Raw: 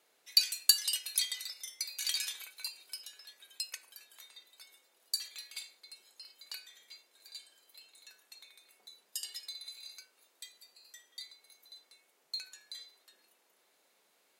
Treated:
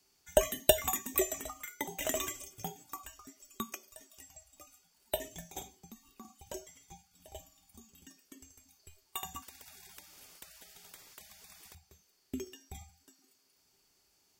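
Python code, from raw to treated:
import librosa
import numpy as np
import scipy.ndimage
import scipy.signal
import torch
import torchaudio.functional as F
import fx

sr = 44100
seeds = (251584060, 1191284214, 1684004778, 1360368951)

y = fx.band_swap(x, sr, width_hz=4000)
y = fx.peak_eq(y, sr, hz=390.0, db=12.0, octaves=0.2)
y = fx.spectral_comp(y, sr, ratio=10.0, at=(9.42, 11.75))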